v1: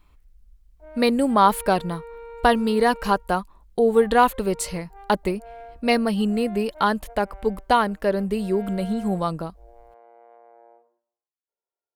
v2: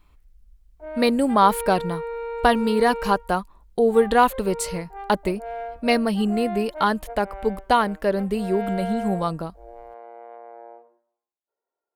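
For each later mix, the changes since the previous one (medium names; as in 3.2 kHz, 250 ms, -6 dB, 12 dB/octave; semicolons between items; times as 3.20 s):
background +9.0 dB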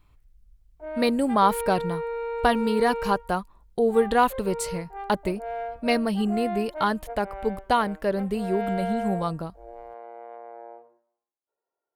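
speech -3.5 dB; master: add peaking EQ 110 Hz +15 dB 0.41 oct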